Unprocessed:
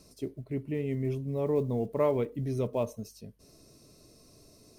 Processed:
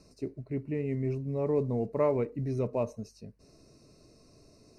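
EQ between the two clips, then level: Butterworth band-stop 3.3 kHz, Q 3.4; distance through air 72 m; 0.0 dB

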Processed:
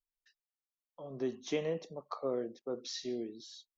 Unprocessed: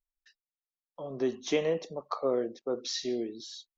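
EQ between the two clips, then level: dynamic bell 150 Hz, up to +5 dB, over -46 dBFS, Q 0.95; -7.0 dB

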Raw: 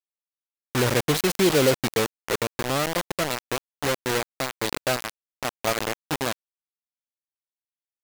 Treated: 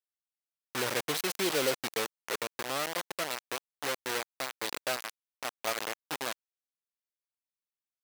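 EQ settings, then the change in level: high-pass 620 Hz 6 dB/octave; band-stop 6.9 kHz, Q 24; -6.0 dB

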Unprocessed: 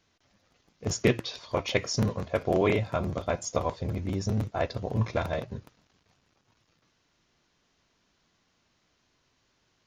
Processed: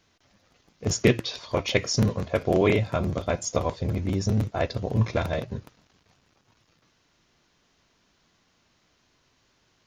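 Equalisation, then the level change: dynamic bell 950 Hz, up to -4 dB, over -39 dBFS, Q 0.88; +4.5 dB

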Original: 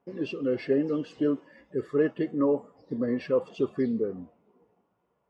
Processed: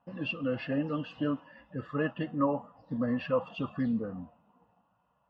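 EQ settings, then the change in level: resonant low-pass 2.6 kHz, resonance Q 7.3; static phaser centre 950 Hz, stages 4; +4.0 dB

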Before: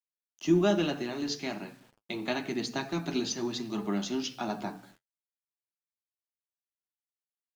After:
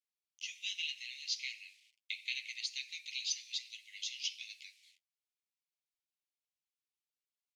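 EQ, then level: steep high-pass 2.1 kHz 96 dB/octave; distance through air 58 m; +2.0 dB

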